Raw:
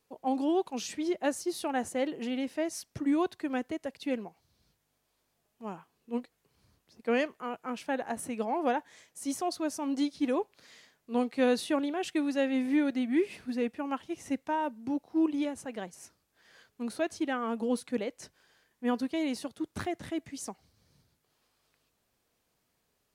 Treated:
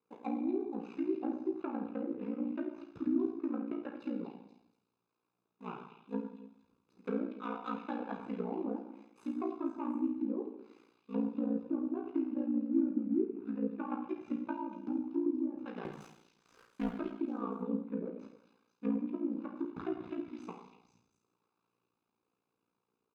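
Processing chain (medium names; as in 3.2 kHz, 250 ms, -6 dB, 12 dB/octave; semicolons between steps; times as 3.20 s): median filter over 25 samples; low-pass that closes with the level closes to 350 Hz, closed at -27.5 dBFS; high-pass 270 Hz 12 dB/octave; treble shelf 9 kHz -11 dB; comb 0.8 ms, depth 69%; 15.85–16.90 s: waveshaping leveller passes 3; repeats whose band climbs or falls 240 ms, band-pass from 3.6 kHz, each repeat 0.7 oct, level -6 dB; reverberation RT60 0.80 s, pre-delay 8 ms, DRR 1 dB; ring modulator 29 Hz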